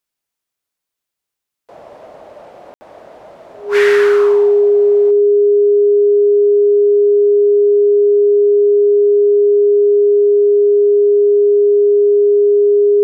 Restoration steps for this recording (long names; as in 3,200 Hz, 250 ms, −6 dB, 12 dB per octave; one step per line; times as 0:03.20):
notch filter 410 Hz, Q 30
ambience match 0:02.74–0:02.81
echo removal 93 ms −13 dB